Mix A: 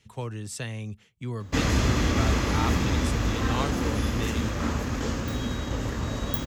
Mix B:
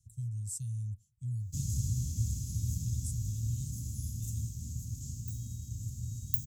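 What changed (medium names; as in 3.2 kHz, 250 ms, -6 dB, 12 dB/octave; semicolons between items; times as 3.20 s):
background: add high-pass 120 Hz 12 dB/octave; master: add Chebyshev band-stop 120–7400 Hz, order 3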